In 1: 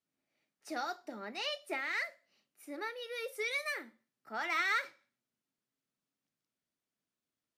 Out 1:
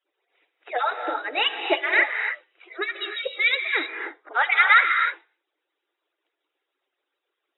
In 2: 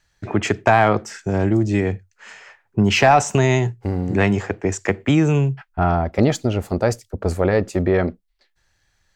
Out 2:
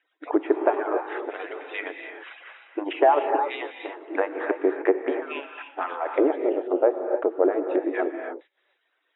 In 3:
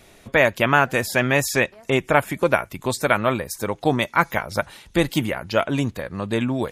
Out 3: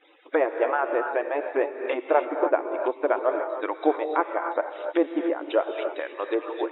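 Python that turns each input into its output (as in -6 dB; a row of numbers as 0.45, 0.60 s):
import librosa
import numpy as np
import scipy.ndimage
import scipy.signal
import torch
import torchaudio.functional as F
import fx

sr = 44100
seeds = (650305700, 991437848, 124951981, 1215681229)

y = fx.hpss_only(x, sr, part='percussive')
y = fx.env_lowpass_down(y, sr, base_hz=800.0, full_db=-21.0)
y = fx.brickwall_bandpass(y, sr, low_hz=280.0, high_hz=3900.0)
y = fx.rev_gated(y, sr, seeds[0], gate_ms=330, shape='rising', drr_db=5.0)
y = y * 10.0 ** (-26 / 20.0) / np.sqrt(np.mean(np.square(y)))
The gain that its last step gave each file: +17.5, +1.5, 0.0 dB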